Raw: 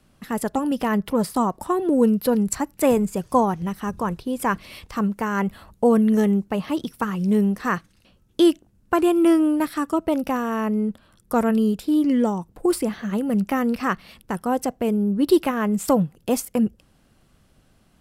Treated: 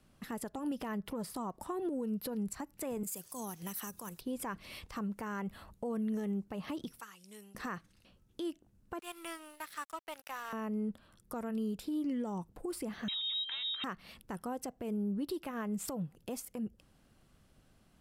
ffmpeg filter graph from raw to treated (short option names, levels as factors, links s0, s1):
-filter_complex "[0:a]asettb=1/sr,asplit=3[s0][s1][s2];[s0]atrim=end=3.034[s3];[s1]atrim=start=3.03:end=4.21,asetpts=PTS-STARTPTS,afade=t=in:d=0.004:c=qsin,afade=t=out:st=1.176:d=0.004:c=qsin,aemphasis=mode=production:type=riaa,acrossover=split=310|3000[s4][s5][s6];[s5]acompressor=threshold=0.0141:ratio=2.5:attack=3.2:release=140:knee=2.83:detection=peak[s7];[s4][s7][s6]amix=inputs=3:normalize=0[s8];[s2]atrim=start=4.206[s9];[s3][s8]acrossfade=d=0.004:c1=hsin:c2=qsin[s10];[s10][s9]acrossfade=d=0.004:c1=qsin:c2=hsin,asettb=1/sr,asplit=3[s11][s12][s13];[s11]atrim=end=7.004[s14];[s12]atrim=start=7:end=7.55,asetpts=PTS-STARTPTS,afade=t=in:d=0.004:c=qsin,afade=t=out:st=0.546:d=0.004:c=qsin,lowpass=9700,aderivative[s15];[s13]atrim=start=7.546[s16];[s14][s15]acrossfade=d=0.004:c1=hsin:c2=qsin[s17];[s17][s16]acrossfade=d=0.004:c1=qsin:c2=hsin,asettb=1/sr,asplit=3[s18][s19][s20];[s18]atrim=end=8.994[s21];[s19]atrim=start=8.99:end=10.53,asetpts=PTS-STARTPTS,afade=t=in:d=0.004:c=qsin,afade=t=out:st=1.536:d=0.004:c=qsin,highpass=1200,aeval=exprs='sgn(val(0))*max(abs(val(0))-0.00631,0)':c=same[s22];[s20]atrim=start=10.526[s23];[s21][s22]acrossfade=d=0.004:c1=hsin:c2=qsin[s24];[s24][s23]acrossfade=d=0.004:c1=qsin:c2=hsin,asettb=1/sr,asplit=3[s25][s26][s27];[s25]atrim=end=13.084[s28];[s26]atrim=start=13.08:end=13.84,asetpts=PTS-STARTPTS,afade=t=in:d=0.004:c=qsin,afade=t=out:st=0.756:d=0.004:c=qsin,aeval=exprs='0.168*(abs(mod(val(0)/0.168+3,4)-2)-1)':c=same,aeval=exprs='val(0)+0.0355*sin(2*PI*830*n/s)':c=same,lowpass=f=3400:t=q:w=0.5098,lowpass=f=3400:t=q:w=0.6013,lowpass=f=3400:t=q:w=0.9,lowpass=f=3400:t=q:w=2.563,afreqshift=-4000[s29];[s27]atrim=start=13.836[s30];[s28][s29]acrossfade=d=0.004:c1=hsin:c2=qsin[s31];[s31][s30]acrossfade=d=0.004:c1=qsin:c2=hsin,acompressor=threshold=0.0708:ratio=5,alimiter=limit=0.075:level=0:latency=1:release=163,volume=0.447"